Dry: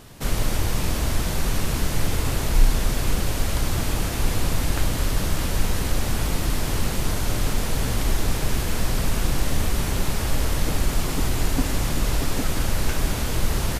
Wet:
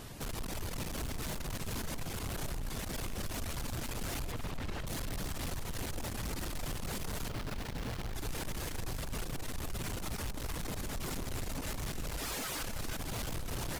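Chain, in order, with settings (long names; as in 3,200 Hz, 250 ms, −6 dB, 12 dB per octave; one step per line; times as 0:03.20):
0:04.32–0:04.87: low-pass filter 3,700 Hz
reverb reduction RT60 0.96 s
0:12.17–0:12.63: high-pass filter 770 Hz 6 dB per octave
downward compressor 4 to 1, threshold −22 dBFS, peak gain reduction 11.5 dB
brickwall limiter −21.5 dBFS, peak gain reduction 7 dB
gain into a clipping stage and back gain 35 dB
on a send: delay that swaps between a low-pass and a high-pass 159 ms, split 1,100 Hz, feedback 71%, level −8.5 dB
0:07.29–0:08.15: on the sum: windowed peak hold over 5 samples
level −1 dB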